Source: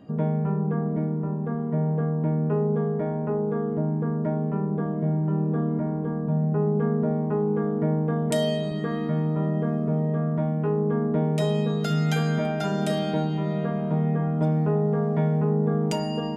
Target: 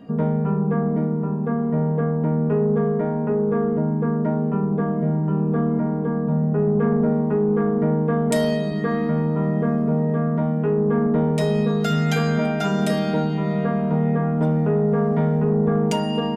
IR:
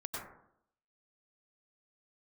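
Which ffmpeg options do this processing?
-af "aecho=1:1:4.3:0.53,asoftclip=type=tanh:threshold=-14dB,volume=4dB"

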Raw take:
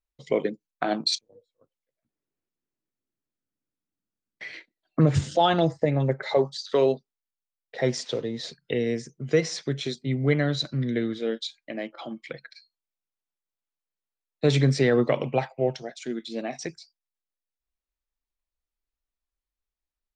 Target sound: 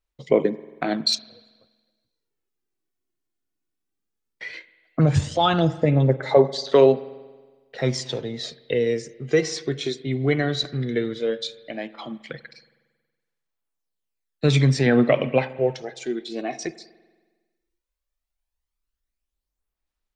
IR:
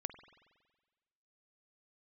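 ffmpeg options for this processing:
-filter_complex "[0:a]asettb=1/sr,asplit=3[link_01][link_02][link_03];[link_01]atrim=end=14.864[link_04];[link_02]atrim=start=14.86:end=15.55,asetpts=PTS-STARTPTS,afade=type=in:duration=0.004:curve=qsin,afade=type=out:start_time=0.686:duration=0.004:curve=qsin,equalizer=frequency=250:width_type=o:width=0.67:gain=8,equalizer=frequency=2500:width_type=o:width=0.67:gain=8,equalizer=frequency=6300:width_type=o:width=0.67:gain=-11[link_05];[link_03]atrim=start=15.546[link_06];[link_04][link_05]acrossfade=duration=0.004:curve1=hsin:curve2=qsin[link_07];[link_07][link_06]acrossfade=duration=0.004:curve1=qsin:curve2=hsin,aphaser=in_gain=1:out_gain=1:delay=2.8:decay=0.44:speed=0.15:type=sinusoidal,asplit=2[link_08][link_09];[1:a]atrim=start_sample=2205[link_10];[link_09][link_10]afir=irnorm=-1:irlink=0,volume=1dB[link_11];[link_08][link_11]amix=inputs=2:normalize=0,volume=-3.5dB"

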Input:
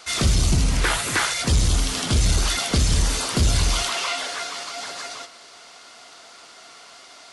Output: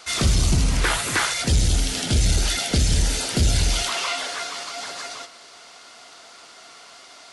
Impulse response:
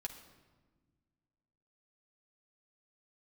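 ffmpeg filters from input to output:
-filter_complex "[0:a]asettb=1/sr,asplit=3[link_01][link_02][link_03];[link_01]atrim=end=1.444[link_04];[link_02]atrim=start=1.44:end=3.87,asetpts=PTS-STARTPTS,afade=type=in:duration=0.004:curve=qsin,afade=type=out:start_time=2.426:duration=0.004:curve=qsin,equalizer=frequency=1100:width_type=o:width=0.3:gain=-14.5[link_05];[link_03]atrim=start=3.866[link_06];[link_04][link_05]acrossfade=duration=0.004:curve1=hsin:curve2=qsin[link_07];[link_07][link_06]acrossfade=duration=0.004:curve1=qsin:curve2=hsin"

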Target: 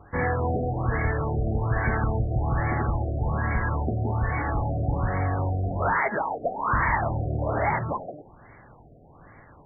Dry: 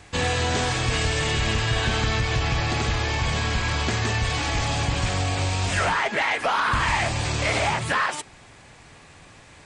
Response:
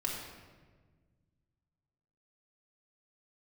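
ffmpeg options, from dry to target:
-af "bandreject=frequency=88.54:width_type=h:width=4,bandreject=frequency=177.08:width_type=h:width=4,bandreject=frequency=265.62:width_type=h:width=4,bandreject=frequency=354.16:width_type=h:width=4,bandreject=frequency=442.7:width_type=h:width=4,bandreject=frequency=531.24:width_type=h:width=4,bandreject=frequency=619.78:width_type=h:width=4,afftfilt=real='re*lt(b*sr/1024,730*pow(2300/730,0.5+0.5*sin(2*PI*1.2*pts/sr)))':imag='im*lt(b*sr/1024,730*pow(2300/730,0.5+0.5*sin(2*PI*1.2*pts/sr)))':win_size=1024:overlap=0.75"

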